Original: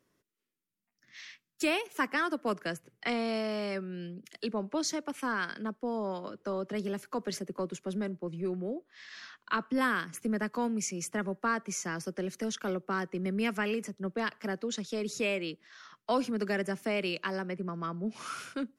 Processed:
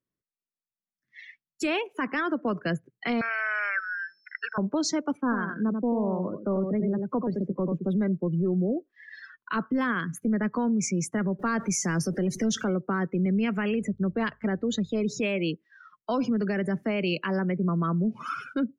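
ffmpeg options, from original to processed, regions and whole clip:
ffmpeg -i in.wav -filter_complex "[0:a]asettb=1/sr,asplit=3[link_01][link_02][link_03];[link_01]atrim=end=3.214[link_04];[link_02]atrim=start=3.21:end=4.58,asetpts=PTS-STARTPTS,afade=type=in:duration=0.004:curve=qsin,afade=type=out:start_time=1.366:duration=0.004:curve=qsin,highpass=frequency=1500:width_type=q:width=11,highshelf=frequency=2700:width_type=q:width=1.5:gain=-9.5,aeval=exprs='val(0)+0.001*sin(2*PI*5300*n/s)':channel_layout=same[link_05];[link_03]atrim=start=4.576[link_06];[link_04][link_05]acrossfade=duration=0.004:curve1=hsin:curve2=qsin[link_07];[link_07][link_06]acrossfade=duration=0.004:curve1=qsin:curve2=hsin,asettb=1/sr,asplit=3[link_08][link_09][link_10];[link_08]atrim=end=5.174[link_11];[link_09]atrim=start=5.17:end=7.88,asetpts=PTS-STARTPTS,afade=type=in:duration=0.004:curve=qsin,afade=type=out:start_time=2.706:duration=0.004:curve=qsin,lowpass=frequency=1000:poles=1,aecho=1:1:89:0.473,atrim=end_sample=119511[link_12];[link_10]atrim=start=7.876[link_13];[link_11][link_12]acrossfade=duration=0.004:curve1=hsin:curve2=qsin[link_14];[link_14][link_13]acrossfade=duration=0.004:curve1=qsin:curve2=hsin,asettb=1/sr,asplit=3[link_15][link_16][link_17];[link_15]atrim=end=11.394[link_18];[link_16]atrim=start=11.39:end=12.64,asetpts=PTS-STARTPTS,afade=type=in:duration=0.004:curve=qsin,afade=type=out:start_time=1.246:duration=0.004:curve=qsin,aeval=exprs='val(0)+0.5*0.00631*sgn(val(0))':channel_layout=same,bass=frequency=250:gain=1,treble=frequency=4000:gain=5[link_19];[link_17]atrim=start=12.636[link_20];[link_18][link_19]acrossfade=duration=0.004:curve1=hsin:curve2=qsin[link_21];[link_21][link_20]acrossfade=duration=0.004:curve1=qsin:curve2=hsin,asettb=1/sr,asplit=3[link_22][link_23][link_24];[link_22]atrim=end=13.694[link_25];[link_23]atrim=start=13.69:end=15.05,asetpts=PTS-STARTPTS,afade=type=in:duration=0.004:curve=qsin,afade=type=out:start_time=1.356:duration=0.004:curve=qsin,bandreject=frequency=5500:width=6,aeval=exprs='val(0)+0.000708*(sin(2*PI*50*n/s)+sin(2*PI*2*50*n/s)/2+sin(2*PI*3*50*n/s)/3+sin(2*PI*4*50*n/s)/4+sin(2*PI*5*50*n/s)/5)':channel_layout=same[link_26];[link_24]atrim=start=15.046[link_27];[link_25][link_26]acrossfade=duration=0.004:curve1=hsin:curve2=qsin[link_28];[link_28][link_27]acrossfade=duration=0.004:curve1=qsin:curve2=hsin,afftdn=noise_reduction=27:noise_floor=-43,bass=frequency=250:gain=8,treble=frequency=4000:gain=-4,alimiter=level_in=3dB:limit=-24dB:level=0:latency=1:release=52,volume=-3dB,volume=7.5dB" out.wav

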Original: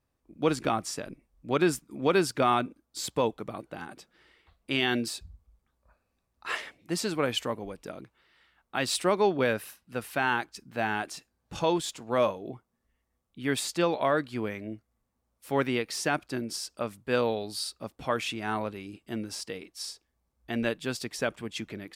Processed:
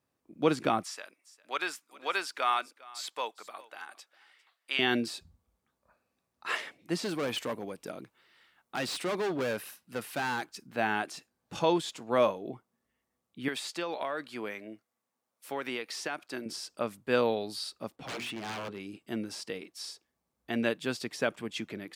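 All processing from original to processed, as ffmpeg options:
ffmpeg -i in.wav -filter_complex "[0:a]asettb=1/sr,asplit=3[link_01][link_02][link_03];[link_01]atrim=end=0.834[link_04];[link_02]atrim=start=0.83:end=4.79,asetpts=PTS-STARTPTS,afade=type=in:duration=0.004:curve=qsin,afade=type=out:start_time=3.956:duration=0.004:curve=qsin,highpass=1000,aecho=1:1:403:0.0841,atrim=end_sample=174636[link_05];[link_03]atrim=start=4.786[link_06];[link_04][link_05]acrossfade=duration=0.004:curve1=hsin:curve2=qsin[link_07];[link_07][link_06]acrossfade=duration=0.004:curve1=qsin:curve2=hsin,asettb=1/sr,asplit=3[link_08][link_09][link_10];[link_08]atrim=end=7.034[link_11];[link_09]atrim=start=7.03:end=10.67,asetpts=PTS-STARTPTS,afade=type=in:duration=0.004:curve=qsin,afade=type=out:start_time=3.636:duration=0.004:curve=qsin,highshelf=frequency=5800:gain=5.5,volume=28.5dB,asoftclip=hard,volume=-28.5dB[link_12];[link_10]atrim=start=10.666[link_13];[link_11][link_12]acrossfade=duration=0.004:curve1=hsin:curve2=qsin[link_14];[link_14][link_13]acrossfade=duration=0.004:curve1=qsin:curve2=hsin,asettb=1/sr,asplit=3[link_15][link_16][link_17];[link_15]atrim=end=13.484[link_18];[link_16]atrim=start=13.48:end=16.46,asetpts=PTS-STARTPTS,afade=type=in:duration=0.004:curve=qsin,afade=type=out:start_time=2.976:duration=0.004:curve=qsin,highpass=frequency=550:poles=1,acompressor=threshold=-29dB:ratio=6:attack=3.2:release=140:knee=1:detection=peak[link_19];[link_17]atrim=start=16.456[link_20];[link_18][link_19]acrossfade=duration=0.004:curve1=hsin:curve2=qsin[link_21];[link_21][link_20]acrossfade=duration=0.004:curve1=qsin:curve2=hsin,asettb=1/sr,asplit=3[link_22][link_23][link_24];[link_22]atrim=end=17.964[link_25];[link_23]atrim=start=17.96:end=18.8,asetpts=PTS-STARTPTS,afade=type=in:duration=0.004:curve=qsin,afade=type=out:start_time=0.836:duration=0.004:curve=qsin,highshelf=frequency=5800:gain=-11.5,bandreject=frequency=60:width_type=h:width=6,bandreject=frequency=120:width_type=h:width=6,bandreject=frequency=180:width_type=h:width=6,bandreject=frequency=240:width_type=h:width=6,bandreject=frequency=300:width_type=h:width=6,bandreject=frequency=360:width_type=h:width=6,bandreject=frequency=420:width_type=h:width=6,aeval=exprs='0.0251*(abs(mod(val(0)/0.0251+3,4)-2)-1)':channel_layout=same[link_26];[link_24]atrim=start=18.796[link_27];[link_25][link_26]acrossfade=duration=0.004:curve1=hsin:curve2=qsin[link_28];[link_28][link_27]acrossfade=duration=0.004:curve1=qsin:curve2=hsin,acrossover=split=4700[link_29][link_30];[link_30]acompressor=threshold=-43dB:ratio=4:attack=1:release=60[link_31];[link_29][link_31]amix=inputs=2:normalize=0,highpass=140" out.wav

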